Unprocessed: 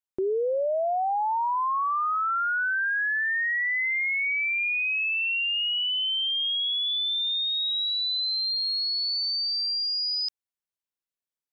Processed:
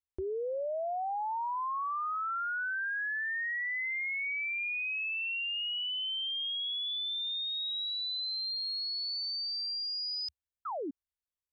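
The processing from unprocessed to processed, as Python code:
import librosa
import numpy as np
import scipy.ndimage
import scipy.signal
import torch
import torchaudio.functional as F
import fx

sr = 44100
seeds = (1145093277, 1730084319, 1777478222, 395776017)

y = fx.low_shelf_res(x, sr, hz=110.0, db=13.5, q=3.0)
y = fx.spec_paint(y, sr, seeds[0], shape='fall', start_s=10.65, length_s=0.26, low_hz=250.0, high_hz=1400.0, level_db=-28.0)
y = y * 10.0 ** (-8.0 / 20.0)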